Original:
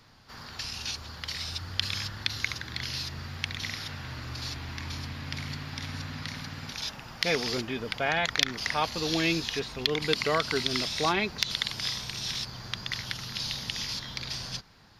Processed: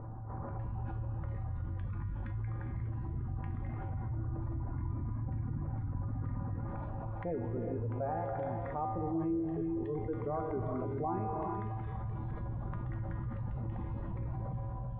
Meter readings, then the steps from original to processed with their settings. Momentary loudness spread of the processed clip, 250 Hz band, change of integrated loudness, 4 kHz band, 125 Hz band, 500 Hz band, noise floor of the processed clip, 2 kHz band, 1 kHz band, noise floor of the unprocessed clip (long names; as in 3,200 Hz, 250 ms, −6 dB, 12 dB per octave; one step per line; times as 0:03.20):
5 LU, −2.0 dB, −7.0 dB, below −40 dB, +3.5 dB, −5.0 dB, −41 dBFS, −24.0 dB, −5.0 dB, −46 dBFS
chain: sub-octave generator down 1 octave, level −6 dB
pitch vibrato 1.7 Hz 11 cents
automatic gain control gain up to 6 dB
on a send: feedback echo with a high-pass in the loop 223 ms, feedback 66%, high-pass 160 Hz, level −13 dB
on the sum: reverb reduction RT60 1.6 s
gate on every frequency bin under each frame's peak −20 dB strong
inverse Chebyshev low-pass filter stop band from 5,300 Hz, stop band 80 dB
low-shelf EQ 74 Hz +8 dB
tuned comb filter 110 Hz, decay 0.72 s, harmonics odd, mix 90%
reverb whose tail is shaped and stops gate 440 ms rising, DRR 5 dB
envelope flattener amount 70%